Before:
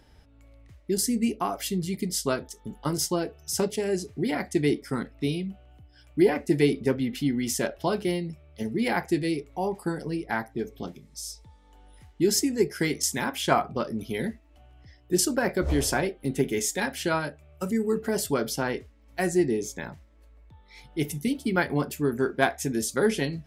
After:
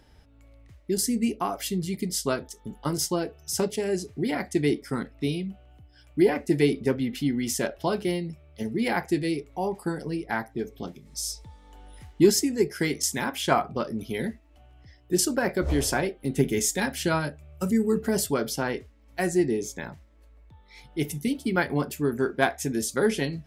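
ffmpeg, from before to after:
ffmpeg -i in.wav -filter_complex "[0:a]asplit=3[link_01][link_02][link_03];[link_01]afade=type=out:start_time=11.05:duration=0.02[link_04];[link_02]acontrast=37,afade=type=in:start_time=11.05:duration=0.02,afade=type=out:start_time=12.3:duration=0.02[link_05];[link_03]afade=type=in:start_time=12.3:duration=0.02[link_06];[link_04][link_05][link_06]amix=inputs=3:normalize=0,asettb=1/sr,asplit=3[link_07][link_08][link_09];[link_07]atrim=end=16.374[link_10];[link_08]atrim=start=16.37:end=18.25,asetpts=PTS-STARTPTS,afade=type=in:duration=0.004:curve=qsin,afade=type=out:start_time=1.876:duration=0.004:curve=qsin,bass=frequency=250:gain=6,treble=frequency=4000:gain=3[link_11];[link_09]atrim=start=18.246[link_12];[link_10][link_11]acrossfade=duration=0.004:curve1=hsin:curve2=qsin[link_13];[link_13][link_12]acrossfade=duration=0.004:curve1=qsin:curve2=hsin" out.wav

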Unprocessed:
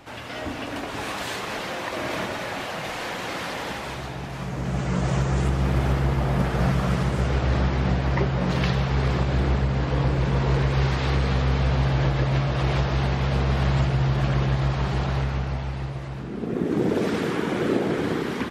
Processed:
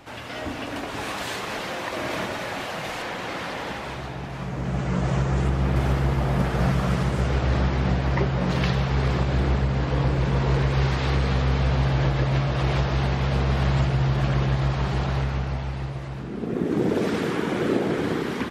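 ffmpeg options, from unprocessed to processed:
ffmpeg -i in.wav -filter_complex "[0:a]asettb=1/sr,asplit=3[link_01][link_02][link_03];[link_01]atrim=end=3.024[link_04];[link_02]atrim=start=3.02:end=5.76,asetpts=PTS-STARTPTS,afade=type=in:duration=0.004:curve=qsin,afade=type=out:start_time=2.736:duration=0.004:curve=qsin,highshelf=frequency=5500:gain=-7.5[link_05];[link_03]atrim=start=5.756[link_06];[link_04][link_05]acrossfade=duration=0.004:curve1=hsin:curve2=qsin[link_07];[link_07][link_06]acrossfade=duration=0.004:curve1=qsin:curve2=hsin" out.wav

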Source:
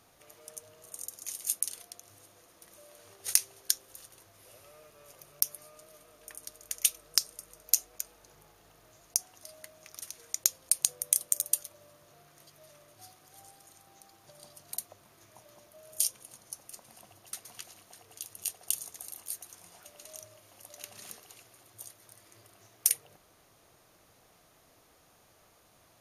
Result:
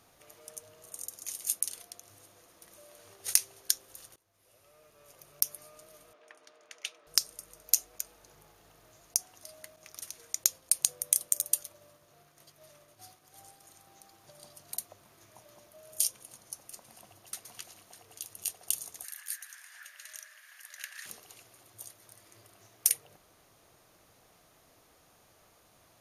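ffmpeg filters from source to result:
ffmpeg -i in.wav -filter_complex "[0:a]asettb=1/sr,asplit=3[link_01][link_02][link_03];[link_01]atrim=end=6.134[link_04];[link_02]atrim=start=6.13:end=7.07,asetpts=PTS-STARTPTS,afade=type=in:duration=0.004:curve=qsin,afade=type=out:start_time=0.936:duration=0.004:curve=qsin,highpass=380,lowpass=2900[link_05];[link_03]atrim=start=7.066[link_06];[link_04][link_05]acrossfade=duration=0.004:curve1=hsin:curve2=qsin[link_07];[link_07][link_06]acrossfade=duration=0.004:curve1=qsin:curve2=hsin,asettb=1/sr,asplit=3[link_08][link_09][link_10];[link_08]atrim=end=9.764[link_11];[link_09]atrim=start=9.76:end=13.63,asetpts=PTS-STARTPTS,afade=type=in:duration=0.004:curve=qsin,afade=type=out:start_time=3.866:duration=0.004:curve=qsin,agate=range=-33dB:threshold=-57dB:ratio=3:release=100:detection=peak[link_12];[link_10]atrim=start=13.626[link_13];[link_11][link_12]acrossfade=duration=0.004:curve1=hsin:curve2=qsin[link_14];[link_14][link_13]acrossfade=duration=0.004:curve1=qsin:curve2=hsin,asettb=1/sr,asplit=3[link_15][link_16][link_17];[link_15]atrim=end=19.044[link_18];[link_16]atrim=start=19.04:end=21.06,asetpts=PTS-STARTPTS,afade=type=in:duration=0.004:curve=qsin,afade=type=out:start_time=2.016:duration=0.004:curve=qsin,highpass=frequency=1700:width_type=q:width=9.6[link_19];[link_17]atrim=start=21.056[link_20];[link_18][link_19]acrossfade=duration=0.004:curve1=hsin:curve2=qsin[link_21];[link_21][link_20]acrossfade=duration=0.004:curve1=qsin:curve2=hsin,asplit=2[link_22][link_23];[link_22]atrim=end=4.16,asetpts=PTS-STARTPTS,afade=type=out:start_time=4.156:duration=0.004:curve=hsin:silence=0.0891251[link_24];[link_23]atrim=start=4.16,asetpts=PTS-STARTPTS,afade=type=in:duration=1.33:silence=0.0891251[link_25];[link_24][link_25]concat=n=2:v=0:a=1" out.wav

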